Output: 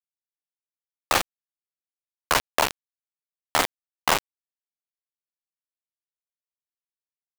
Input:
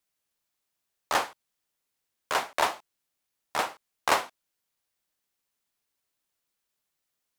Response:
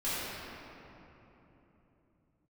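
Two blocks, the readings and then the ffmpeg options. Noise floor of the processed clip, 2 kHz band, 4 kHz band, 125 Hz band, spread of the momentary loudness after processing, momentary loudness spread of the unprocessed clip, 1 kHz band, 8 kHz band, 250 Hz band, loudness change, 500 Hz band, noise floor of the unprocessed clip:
under -85 dBFS, +4.0 dB, +6.5 dB, +12.0 dB, 5 LU, 11 LU, +2.5 dB, +8.0 dB, +6.5 dB, +4.5 dB, +3.0 dB, -83 dBFS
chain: -filter_complex "[0:a]asplit=2[s0][s1];[s1]alimiter=limit=0.168:level=0:latency=1:release=219,volume=1.12[s2];[s0][s2]amix=inputs=2:normalize=0,highpass=190,aemphasis=mode=reproduction:type=50fm,tremolo=f=7.4:d=0.29,bandreject=f=50:t=h:w=6,bandreject=f=100:t=h:w=6,bandreject=f=150:t=h:w=6,bandreject=f=200:t=h:w=6,bandreject=f=250:t=h:w=6,bandreject=f=300:t=h:w=6,bandreject=f=350:t=h:w=6,bandreject=f=400:t=h:w=6,acontrast=24,asplit=2[s3][s4];[s4]adelay=355.7,volume=0.0708,highshelf=f=4000:g=-8[s5];[s3][s5]amix=inputs=2:normalize=0,acompressor=threshold=0.0562:ratio=3,aeval=exprs='(tanh(10*val(0)+0.05)-tanh(0.05))/10':c=same,acrusher=bits=3:mix=0:aa=0.000001,volume=2.11"

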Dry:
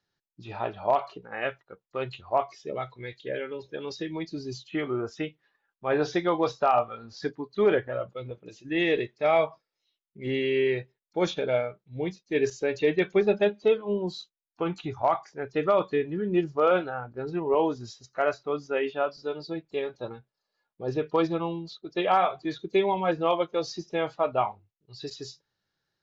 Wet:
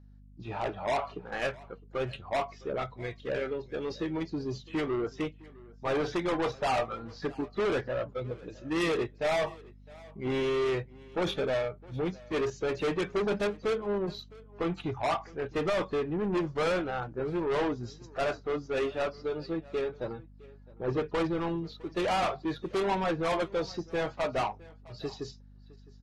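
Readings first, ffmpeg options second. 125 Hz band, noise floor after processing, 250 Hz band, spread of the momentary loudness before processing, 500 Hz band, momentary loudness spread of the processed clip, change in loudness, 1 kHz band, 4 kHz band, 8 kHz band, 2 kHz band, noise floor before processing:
-0.5 dB, -53 dBFS, -2.5 dB, 13 LU, -4.5 dB, 10 LU, -4.0 dB, -5.0 dB, -1.5 dB, no reading, -2.5 dB, under -85 dBFS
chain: -filter_complex "[0:a]highpass=72,asplit=2[s0][s1];[s1]adynamicsmooth=sensitivity=6:basefreq=2200,volume=1.41[s2];[s0][s2]amix=inputs=2:normalize=0,asoftclip=type=tanh:threshold=0.0841,aeval=exprs='val(0)+0.00398*(sin(2*PI*50*n/s)+sin(2*PI*2*50*n/s)/2+sin(2*PI*3*50*n/s)/3+sin(2*PI*4*50*n/s)/4+sin(2*PI*5*50*n/s)/5)':c=same,asplit=2[s3][s4];[s4]aecho=0:1:660:0.075[s5];[s3][s5]amix=inputs=2:normalize=0,volume=0.596" -ar 44100 -c:a aac -b:a 32k

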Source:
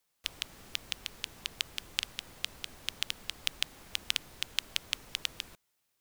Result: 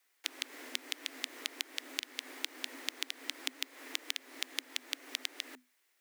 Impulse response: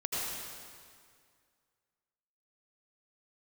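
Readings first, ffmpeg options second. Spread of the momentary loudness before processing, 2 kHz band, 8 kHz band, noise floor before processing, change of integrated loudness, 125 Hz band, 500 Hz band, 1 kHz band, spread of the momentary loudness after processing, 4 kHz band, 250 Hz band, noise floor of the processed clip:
7 LU, -1.5 dB, -1.5 dB, -79 dBFS, -3.0 dB, under -35 dB, +2.5 dB, -1.0 dB, 4 LU, -4.0 dB, +4.5 dB, -75 dBFS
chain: -af "equalizer=f=1700:t=o:w=0.73:g=10,acompressor=threshold=0.02:ratio=10,afreqshift=250,volume=1.33"

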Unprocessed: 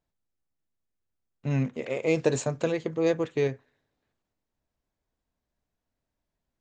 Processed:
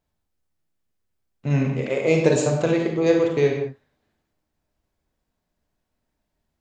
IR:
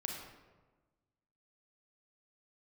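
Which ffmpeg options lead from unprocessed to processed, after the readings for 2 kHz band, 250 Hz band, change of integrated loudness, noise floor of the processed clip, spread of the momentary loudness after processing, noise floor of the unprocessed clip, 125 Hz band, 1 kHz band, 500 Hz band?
+6.5 dB, +7.5 dB, +7.0 dB, -79 dBFS, 8 LU, -85 dBFS, +7.0 dB, +6.5 dB, +7.0 dB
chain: -filter_complex "[1:a]atrim=start_sample=2205,afade=t=out:st=0.26:d=0.01,atrim=end_sample=11907[s0];[0:a][s0]afir=irnorm=-1:irlink=0,volume=2.11"

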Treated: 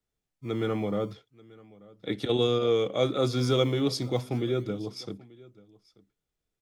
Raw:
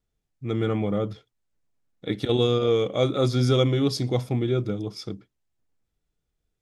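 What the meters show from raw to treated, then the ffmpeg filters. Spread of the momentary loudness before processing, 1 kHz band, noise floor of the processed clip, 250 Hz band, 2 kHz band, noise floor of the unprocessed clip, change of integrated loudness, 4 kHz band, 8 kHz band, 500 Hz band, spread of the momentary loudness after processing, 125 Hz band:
15 LU, -2.0 dB, under -85 dBFS, -3.5 dB, -2.0 dB, -81 dBFS, -3.5 dB, -2.0 dB, -2.0 dB, -2.5 dB, 14 LU, -6.5 dB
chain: -filter_complex "[0:a]lowshelf=f=130:g=-8.5,aecho=1:1:886:0.0708,acrossover=split=100|560|4400[s0][s1][s2][s3];[s0]acrusher=samples=24:mix=1:aa=0.000001:lfo=1:lforange=38.4:lforate=0.33[s4];[s4][s1][s2][s3]amix=inputs=4:normalize=0,volume=0.794"

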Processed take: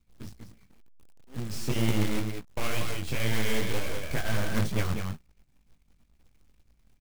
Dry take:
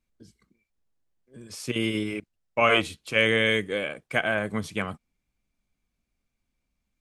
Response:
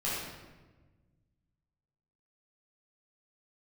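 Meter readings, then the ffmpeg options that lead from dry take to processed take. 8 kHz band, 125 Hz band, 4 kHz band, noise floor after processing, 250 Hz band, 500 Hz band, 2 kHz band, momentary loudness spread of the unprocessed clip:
+4.0 dB, +6.0 dB, -6.5 dB, -67 dBFS, -1.5 dB, -8.0 dB, -10.0 dB, 13 LU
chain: -filter_complex "[0:a]aeval=exprs='if(lt(val(0),0),0.251*val(0),val(0))':c=same,asplit=2[s0][s1];[s1]acompressor=threshold=0.0112:ratio=6,volume=0.891[s2];[s0][s2]amix=inputs=2:normalize=0,alimiter=limit=0.168:level=0:latency=1,bass=f=250:g=12,treble=f=4000:g=3,asplit=2[s3][s4];[s4]aecho=0:1:193:0.447[s5];[s3][s5]amix=inputs=2:normalize=0,aeval=exprs='0.422*(cos(1*acos(clip(val(0)/0.422,-1,1)))-cos(1*PI/2))+0.0841*(cos(4*acos(clip(val(0)/0.422,-1,1)))-cos(4*PI/2))':c=same,flanger=delay=16.5:depth=6.5:speed=2.1,highshelf=f=8500:g=-10.5,acrusher=bits=3:mode=log:mix=0:aa=0.000001,volume=1.41"

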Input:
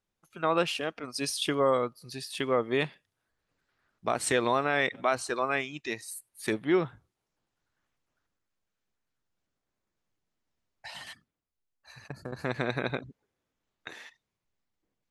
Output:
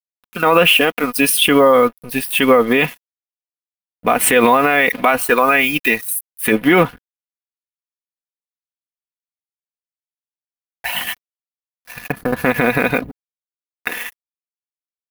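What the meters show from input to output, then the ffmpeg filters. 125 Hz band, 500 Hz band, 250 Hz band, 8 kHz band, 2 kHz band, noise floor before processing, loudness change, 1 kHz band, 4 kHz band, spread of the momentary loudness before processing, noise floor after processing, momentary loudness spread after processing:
+11.5 dB, +14.0 dB, +15.5 dB, +16.0 dB, +17.0 dB, -85 dBFS, +15.0 dB, +15.0 dB, +16.0 dB, 18 LU, under -85 dBFS, 15 LU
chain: -af "highshelf=f=3500:t=q:w=3:g=-7.5,aeval=exprs='sgn(val(0))*max(abs(val(0))-0.00224,0)':c=same,aecho=1:1:4.1:0.56,aexciter=amount=6.6:drive=6.7:freq=10000,alimiter=level_in=10.6:limit=0.891:release=50:level=0:latency=1,volume=0.891"

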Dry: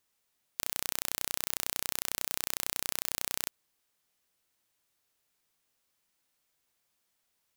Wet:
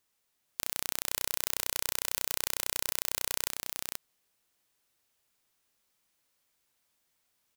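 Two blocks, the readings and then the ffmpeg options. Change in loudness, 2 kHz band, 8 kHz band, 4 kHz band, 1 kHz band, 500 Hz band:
+1.0 dB, +1.5 dB, +1.5 dB, +1.5 dB, +1.0 dB, +2.5 dB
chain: -af "aecho=1:1:482:0.668"

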